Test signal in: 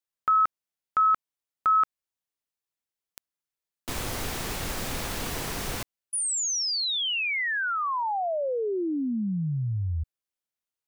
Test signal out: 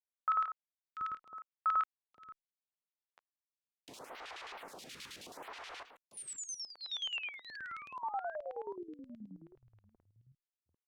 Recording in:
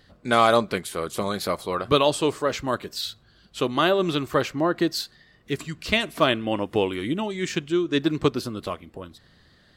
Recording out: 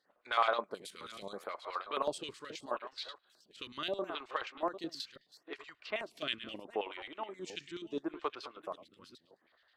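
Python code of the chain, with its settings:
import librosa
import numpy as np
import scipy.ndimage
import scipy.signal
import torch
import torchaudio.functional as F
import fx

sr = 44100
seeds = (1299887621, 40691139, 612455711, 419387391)

y = fx.reverse_delay(x, sr, ms=398, wet_db=-11.0)
y = fx.filter_lfo_bandpass(y, sr, shape='square', hz=9.4, low_hz=920.0, high_hz=3100.0, q=0.97)
y = fx.stagger_phaser(y, sr, hz=0.75)
y = F.gain(torch.from_numpy(y), -6.5).numpy()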